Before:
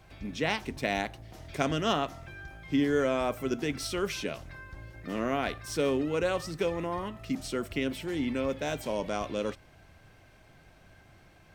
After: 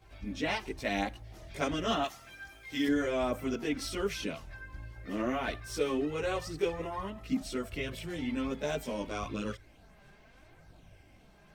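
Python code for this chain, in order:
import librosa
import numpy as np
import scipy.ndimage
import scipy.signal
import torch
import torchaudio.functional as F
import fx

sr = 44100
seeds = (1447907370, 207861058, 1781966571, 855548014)

y = fx.tilt_eq(x, sr, slope=3.0, at=(2.02, 2.87))
y = fx.chorus_voices(y, sr, voices=4, hz=0.36, base_ms=18, depth_ms=2.5, mix_pct=65)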